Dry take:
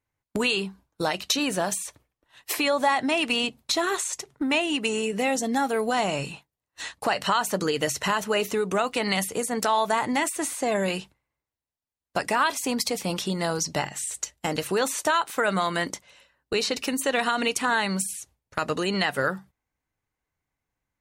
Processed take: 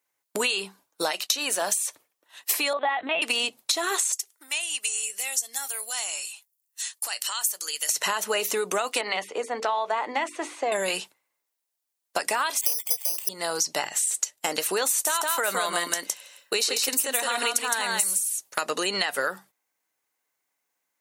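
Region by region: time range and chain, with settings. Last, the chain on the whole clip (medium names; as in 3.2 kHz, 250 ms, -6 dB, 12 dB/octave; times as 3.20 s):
1.11–1.62 s: high-pass 360 Hz 6 dB/octave + gate -45 dBFS, range -10 dB
2.73–3.22 s: LPC vocoder at 8 kHz pitch kept + bass shelf 110 Hz -12 dB
4.12–7.89 s: differentiator + band-stop 3.9 kHz, Q 16
9.01–10.72 s: band-pass 270–2400 Hz + peaking EQ 1.6 kHz -4 dB 0.64 oct + hum notches 50/100/150/200/250/300/350/400/450 Hz
12.61–13.29 s: high-pass 370 Hz + band-stop 1.5 kHz, Q 5.7 + careless resampling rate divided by 8×, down filtered, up zero stuff
14.89–18.61 s: treble shelf 8.3 kHz +10 dB + delay 163 ms -4 dB
whole clip: high-pass 410 Hz 12 dB/octave; treble shelf 5 kHz +11 dB; compression, threshold -25 dBFS; trim +3 dB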